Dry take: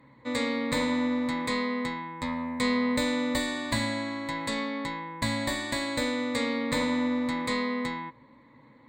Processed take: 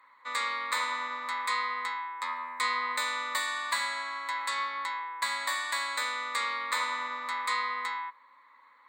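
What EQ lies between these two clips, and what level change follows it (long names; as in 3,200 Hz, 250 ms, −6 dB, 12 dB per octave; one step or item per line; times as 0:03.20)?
high-pass with resonance 1,200 Hz, resonance Q 4
high-shelf EQ 6,200 Hz +5 dB
−3.0 dB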